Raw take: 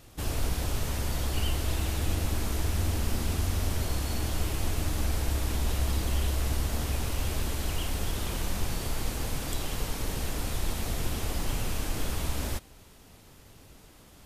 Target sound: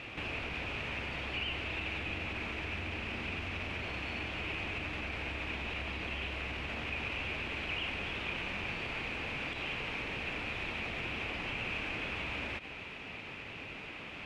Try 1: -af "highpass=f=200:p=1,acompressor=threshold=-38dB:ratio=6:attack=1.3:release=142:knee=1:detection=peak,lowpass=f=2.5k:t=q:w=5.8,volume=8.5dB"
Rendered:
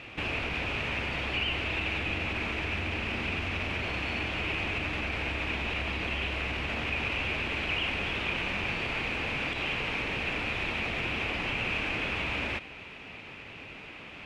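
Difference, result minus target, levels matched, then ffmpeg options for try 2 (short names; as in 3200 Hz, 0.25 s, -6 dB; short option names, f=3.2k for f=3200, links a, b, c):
compressor: peak gain reduction -6 dB
-af "highpass=f=200:p=1,acompressor=threshold=-45.5dB:ratio=6:attack=1.3:release=142:knee=1:detection=peak,lowpass=f=2.5k:t=q:w=5.8,volume=8.5dB"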